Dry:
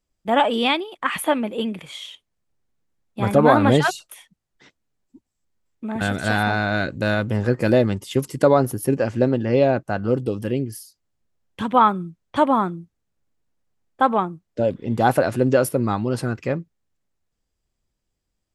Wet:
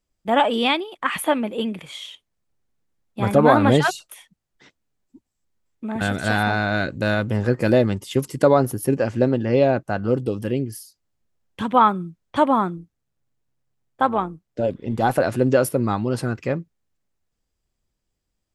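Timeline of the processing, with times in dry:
12.77–15.2 AM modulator 130 Hz, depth 25%

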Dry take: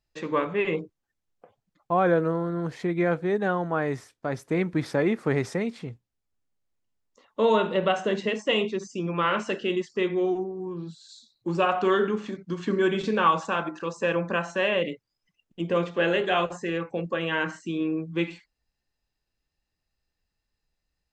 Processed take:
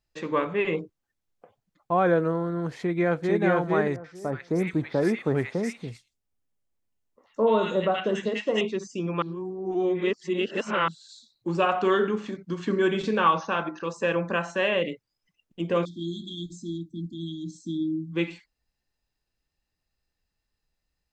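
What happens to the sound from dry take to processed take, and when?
2.78–3.42 echo throw 0.45 s, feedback 15%, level -0.5 dB
3.96–8.61 three bands offset in time lows, mids, highs 80/190 ms, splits 1400/4200 Hz
9.22–10.88 reverse
13.22–13.85 brick-wall FIR low-pass 6600 Hz
15.85–18.12 brick-wall FIR band-stop 350–3200 Hz

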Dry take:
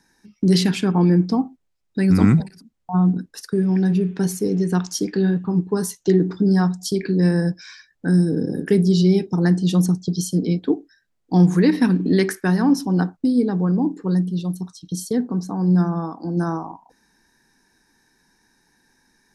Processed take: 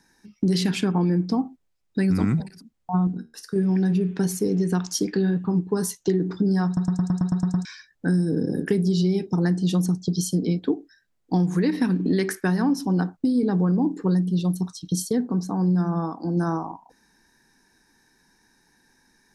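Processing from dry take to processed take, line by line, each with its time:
3.07–3.56 resonator 77 Hz, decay 0.29 s
6.66 stutter in place 0.11 s, 9 plays
13.43–15.02 gain +3.5 dB
whole clip: compressor, threshold -18 dBFS

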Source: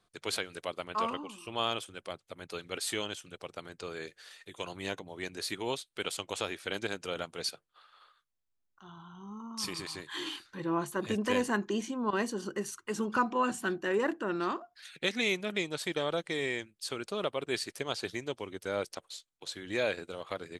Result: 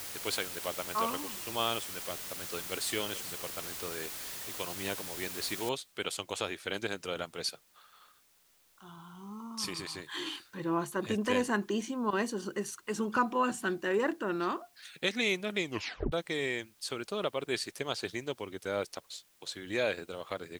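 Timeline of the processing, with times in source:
2.49–2.9 echo throw 0.43 s, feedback 60%, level -12.5 dB
5.69 noise floor step -42 dB -67 dB
15.64 tape stop 0.48 s

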